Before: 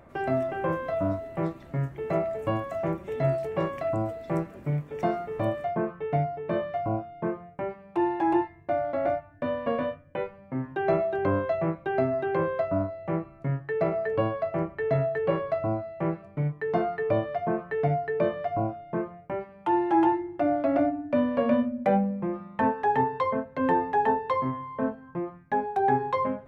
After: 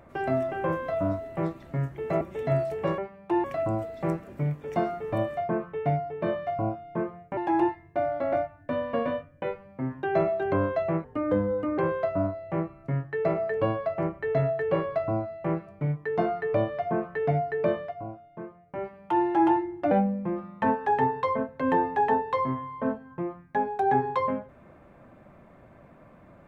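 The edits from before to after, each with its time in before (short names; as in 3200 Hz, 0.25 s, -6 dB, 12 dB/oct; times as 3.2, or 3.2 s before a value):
2.21–2.94 cut
7.64–8.1 move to 3.71
11.77–12.34 speed 77%
18.33–19.4 dip -10 dB, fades 0.18 s
20.47–21.88 cut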